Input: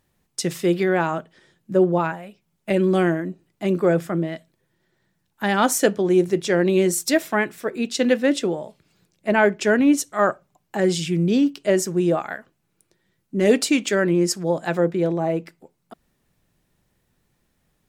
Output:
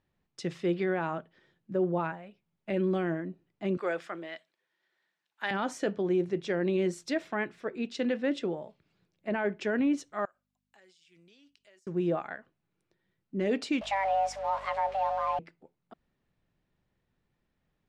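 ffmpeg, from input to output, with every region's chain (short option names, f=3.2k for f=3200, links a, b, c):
-filter_complex "[0:a]asettb=1/sr,asplit=3[a][b][c];[a]atrim=end=3.774[d];[b]atrim=start=3.77:end=5.51,asetpts=PTS-STARTPTS,afade=t=in:d=0.004:c=qsin,afade=t=out:st=1.736:d=0.004:c=qsin,highpass=340,tiltshelf=f=810:g=-7.5[e];[c]atrim=start=5.506[f];[d][e]acrossfade=d=0.004:c1=hsin:c2=qsin[g];[g][f]acrossfade=d=0.004:c1=qsin:c2=hsin,asettb=1/sr,asplit=3[h][i][j];[h]atrim=end=10.254[k];[i]atrim=start=10.25:end=11.87,asetpts=PTS-STARTPTS,afade=t=in:d=0.004:c=qsin,afade=t=out:st=1.616:d=0.004:c=qsin,aeval=exprs='val(0)+0.0126*(sin(2*PI*50*n/s)+sin(2*PI*2*50*n/s)/2+sin(2*PI*3*50*n/s)/3+sin(2*PI*4*50*n/s)/4+sin(2*PI*5*50*n/s)/5)':c=same,aderivative,acompressor=threshold=-46dB:ratio=8:attack=3.2:release=140:knee=1:detection=peak[l];[j]atrim=start=11.866[m];[k][l]acrossfade=d=0.004:c1=hsin:c2=qsin[n];[n][m]acrossfade=d=0.004:c1=qsin:c2=hsin,asettb=1/sr,asplit=3[o][p][q];[o]atrim=end=13.814[r];[p]atrim=start=13.81:end=15.39,asetpts=PTS-STARTPTS,afade=t=in:d=0.004:c=qsin,afade=t=out:st=1.576:d=0.004:c=qsin,aeval=exprs='val(0)+0.5*0.0299*sgn(val(0))':c=same,afreqshift=390,aeval=exprs='val(0)+0.00562*(sin(2*PI*50*n/s)+sin(2*PI*2*50*n/s)/2+sin(2*PI*3*50*n/s)/3+sin(2*PI*4*50*n/s)/4+sin(2*PI*5*50*n/s)/5)':c=same[s];[q]atrim=start=15.386[t];[r][s]acrossfade=d=0.004:c1=hsin:c2=qsin[u];[u][t]acrossfade=d=0.004:c1=qsin:c2=hsin,lowpass=3.7k,alimiter=limit=-11dB:level=0:latency=1:release=27,volume=-9dB"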